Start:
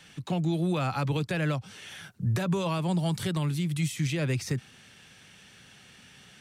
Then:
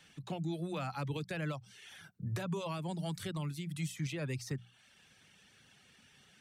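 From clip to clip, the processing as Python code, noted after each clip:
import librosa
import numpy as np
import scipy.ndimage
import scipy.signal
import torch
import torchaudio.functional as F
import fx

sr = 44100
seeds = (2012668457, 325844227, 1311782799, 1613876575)

y = fx.dereverb_blind(x, sr, rt60_s=0.67)
y = fx.hum_notches(y, sr, base_hz=60, count=3)
y = y * 10.0 ** (-8.0 / 20.0)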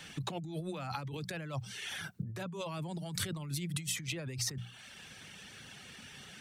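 y = fx.over_compress(x, sr, threshold_db=-45.0, ratio=-1.0)
y = y * 10.0 ** (6.0 / 20.0)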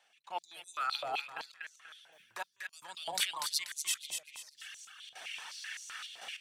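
y = fx.step_gate(x, sr, bpm=99, pattern='..xxxxxx.x....xx', floor_db=-24.0, edge_ms=4.5)
y = fx.echo_feedback(y, sr, ms=242, feedback_pct=34, wet_db=-5.0)
y = fx.filter_held_highpass(y, sr, hz=7.8, low_hz=700.0, high_hz=6400.0)
y = y * 10.0 ** (2.5 / 20.0)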